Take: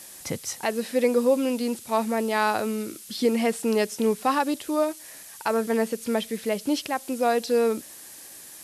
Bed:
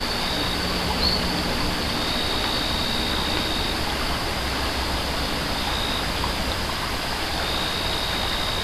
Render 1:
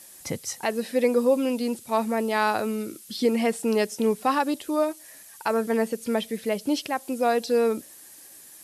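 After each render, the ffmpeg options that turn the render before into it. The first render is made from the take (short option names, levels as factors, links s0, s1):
-af "afftdn=nr=6:nf=-45"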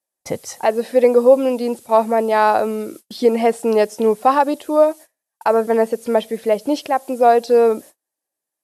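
-af "agate=range=0.0141:threshold=0.00891:ratio=16:detection=peak,equalizer=f=660:w=0.75:g=12"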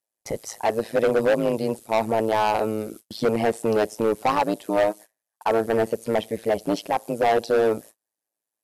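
-af "tremolo=f=110:d=0.919,asoftclip=type=hard:threshold=0.188"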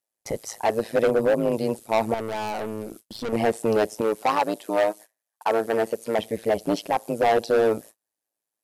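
-filter_complex "[0:a]asettb=1/sr,asplit=3[s0][s1][s2];[s0]atrim=end=1.104[s3];[s1]atrim=start=1.1:end=1.52,asetpts=PTS-STARTPTS,afade=t=in:d=0.004:c=qsin,afade=t=out:st=0.416:d=0.004:c=qsin,equalizer=f=3800:w=0.43:g=-6.5[s4];[s2]atrim=start=1.516[s5];[s3][s4]acrossfade=d=0.004:c1=hsin:c2=qsin[s6];[s6][s5]acrossfade=d=0.004:c1=qsin:c2=hsin,asettb=1/sr,asplit=3[s7][s8][s9];[s7]atrim=end=2.144[s10];[s8]atrim=start=2.14:end=3.33,asetpts=PTS-STARTPTS,afade=t=in:d=0.004:c=qsin,afade=t=out:st=1.186:d=0.004:c=qsin,aeval=exprs='(tanh(20*val(0)+0.45)-tanh(0.45))/20':c=same[s11];[s9]atrim=start=3.326[s12];[s10][s11]acrossfade=d=0.004:c1=hsin:c2=qsin[s13];[s13][s12]acrossfade=d=0.004:c1=qsin:c2=hsin,asettb=1/sr,asplit=3[s14][s15][s16];[s14]atrim=end=4.014[s17];[s15]atrim=start=4.01:end=6.19,asetpts=PTS-STARTPTS,afade=t=in:d=0.004:c=qsin,afade=t=out:st=2.176:d=0.004:c=qsin,highpass=f=310:p=1[s18];[s16]atrim=start=6.186[s19];[s17][s18]acrossfade=d=0.004:c1=hsin:c2=qsin[s20];[s20][s19]acrossfade=d=0.004:c1=qsin:c2=hsin"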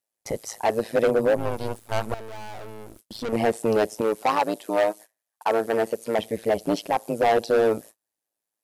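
-filter_complex "[0:a]asettb=1/sr,asplit=3[s0][s1][s2];[s0]atrim=end=1.364[s3];[s1]atrim=start=1.36:end=2.99,asetpts=PTS-STARTPTS,afade=t=in:d=0.004:c=qsin,afade=t=out:st=1.626:d=0.004:c=qsin,aeval=exprs='max(val(0),0)':c=same[s4];[s2]atrim=start=2.986[s5];[s3][s4]acrossfade=d=0.004:c1=hsin:c2=qsin[s6];[s6][s5]acrossfade=d=0.004:c1=qsin:c2=hsin"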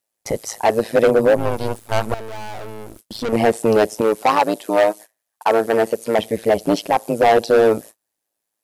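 -af "volume=2.11"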